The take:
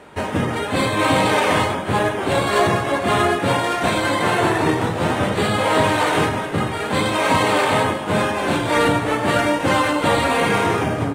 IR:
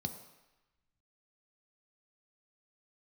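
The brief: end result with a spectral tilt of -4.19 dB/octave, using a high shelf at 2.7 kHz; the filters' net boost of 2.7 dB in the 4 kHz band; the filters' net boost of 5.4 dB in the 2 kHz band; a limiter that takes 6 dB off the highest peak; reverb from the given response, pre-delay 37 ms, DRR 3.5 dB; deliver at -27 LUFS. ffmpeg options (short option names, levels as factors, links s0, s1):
-filter_complex "[0:a]equalizer=f=2000:t=o:g=7.5,highshelf=f=2700:g=-4,equalizer=f=4000:t=o:g=3.5,alimiter=limit=0.335:level=0:latency=1,asplit=2[s0][s1];[1:a]atrim=start_sample=2205,adelay=37[s2];[s1][s2]afir=irnorm=-1:irlink=0,volume=0.668[s3];[s0][s3]amix=inputs=2:normalize=0,volume=0.282"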